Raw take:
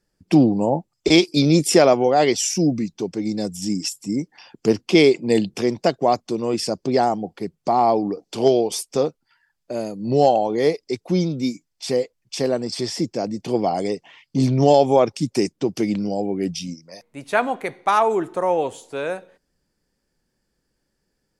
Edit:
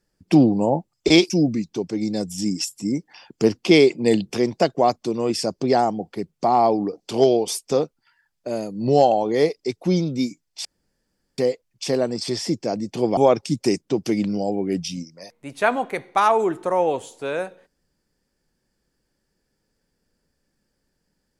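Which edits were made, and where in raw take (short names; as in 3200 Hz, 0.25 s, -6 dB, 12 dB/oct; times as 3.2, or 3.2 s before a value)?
1.3–2.54 cut
11.89 insert room tone 0.73 s
13.68–14.88 cut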